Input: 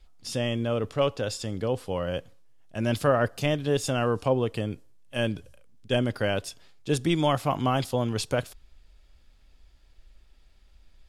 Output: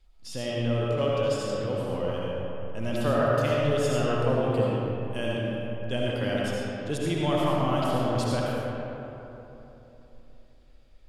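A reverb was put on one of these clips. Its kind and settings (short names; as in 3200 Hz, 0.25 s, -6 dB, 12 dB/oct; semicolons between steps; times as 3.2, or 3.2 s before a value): digital reverb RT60 3.4 s, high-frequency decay 0.45×, pre-delay 35 ms, DRR -5 dB; gain -6.5 dB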